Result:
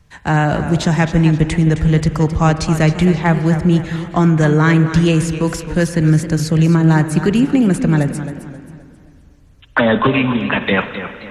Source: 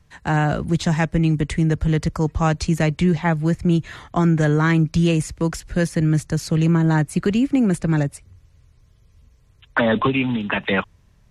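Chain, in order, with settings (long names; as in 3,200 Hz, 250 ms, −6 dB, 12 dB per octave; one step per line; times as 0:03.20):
spring reverb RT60 2.4 s, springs 38/43/58 ms, chirp 70 ms, DRR 11 dB
feedback echo with a swinging delay time 265 ms, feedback 38%, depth 121 cents, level −11.5 dB
level +4.5 dB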